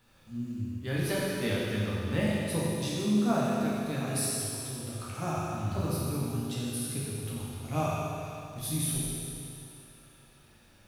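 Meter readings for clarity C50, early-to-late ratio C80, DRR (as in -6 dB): -3.0 dB, -1.5 dB, -7.5 dB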